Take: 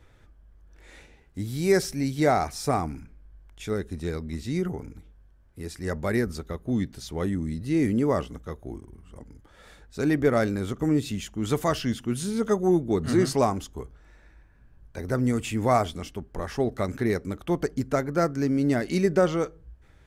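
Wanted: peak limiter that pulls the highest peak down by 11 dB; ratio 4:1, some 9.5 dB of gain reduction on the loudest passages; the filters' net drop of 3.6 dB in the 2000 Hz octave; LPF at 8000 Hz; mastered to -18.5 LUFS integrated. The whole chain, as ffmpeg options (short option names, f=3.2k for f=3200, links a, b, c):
-af "lowpass=8k,equalizer=f=2k:t=o:g=-4.5,acompressor=threshold=-28dB:ratio=4,volume=19.5dB,alimiter=limit=-9dB:level=0:latency=1"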